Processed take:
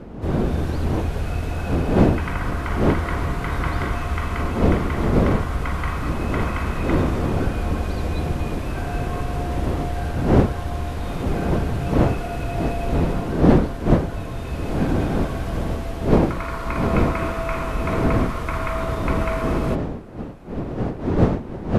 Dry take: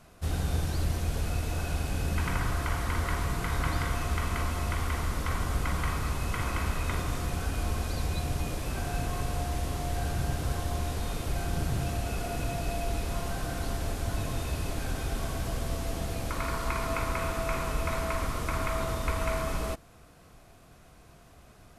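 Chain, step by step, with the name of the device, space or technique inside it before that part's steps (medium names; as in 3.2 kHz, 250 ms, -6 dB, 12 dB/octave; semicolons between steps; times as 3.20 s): tone controls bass -1 dB, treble -12 dB; smartphone video outdoors (wind noise 340 Hz -28 dBFS; level rider gain up to 6.5 dB; AAC 96 kbps 48 kHz)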